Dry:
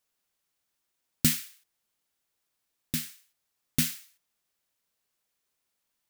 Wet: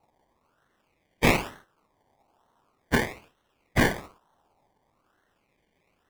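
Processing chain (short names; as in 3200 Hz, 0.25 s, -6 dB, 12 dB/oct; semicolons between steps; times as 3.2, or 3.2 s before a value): nonlinear frequency compression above 2200 Hz 1.5:1; limiter -18 dBFS, peak gain reduction 9.5 dB; decimation with a swept rate 26×, swing 60% 1.1 Hz; LFO bell 0.44 Hz 810–2500 Hz +11 dB; gain +8.5 dB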